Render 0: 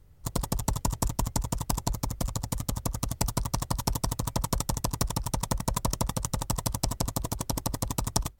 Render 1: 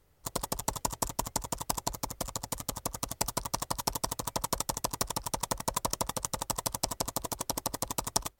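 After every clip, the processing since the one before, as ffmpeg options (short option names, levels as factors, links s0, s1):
-af "bass=f=250:g=-13,treble=f=4000:g=0"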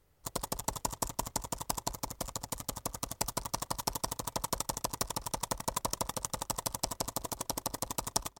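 -filter_complex "[0:a]asplit=2[s0][s1];[s1]adelay=205,lowpass=f=4100:p=1,volume=0.0708,asplit=2[s2][s3];[s3]adelay=205,lowpass=f=4100:p=1,volume=0.38,asplit=2[s4][s5];[s5]adelay=205,lowpass=f=4100:p=1,volume=0.38[s6];[s0][s2][s4][s6]amix=inputs=4:normalize=0,volume=0.75"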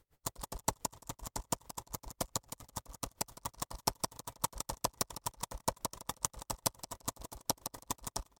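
-af "aeval=exprs='val(0)*pow(10,-31*(0.5-0.5*cos(2*PI*7.2*n/s))/20)':c=same,volume=1.41"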